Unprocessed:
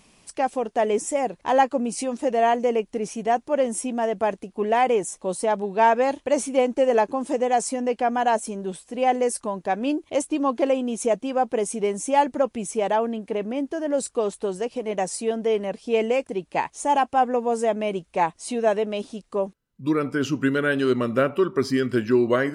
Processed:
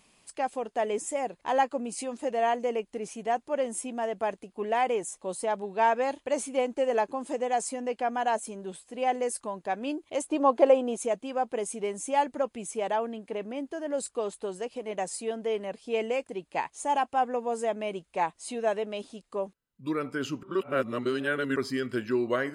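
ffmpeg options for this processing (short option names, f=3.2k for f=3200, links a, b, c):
-filter_complex "[0:a]asettb=1/sr,asplit=3[a][b][c];[a]atrim=end=10.244[d];[b]atrim=start=10.24:end=10.97,asetpts=PTS-STARTPTS,afade=t=in:d=0.004:c=qsin,afade=t=out:st=0.726:d=0.004:c=qsin,equalizer=f=650:t=o:w=1.9:g=10[e];[c]atrim=start=10.966[f];[d][e]acrossfade=d=0.004:c1=hsin:c2=qsin[g];[g][f]acrossfade=d=0.004:c1=qsin:c2=hsin,asplit=3[h][i][j];[h]atrim=end=20.432[k];[i]atrim=start=20.428:end=21.562,asetpts=PTS-STARTPTS,areverse[l];[j]atrim=start=21.558[m];[k][l]acrossfade=d=0.004:c1=hsin:c2=hsin[n];[n][m]acrossfade=d=0.004:c1=hsin:c2=hsin,lowshelf=f=370:g=-6,bandreject=f=5.7k:w=10,volume=-5dB"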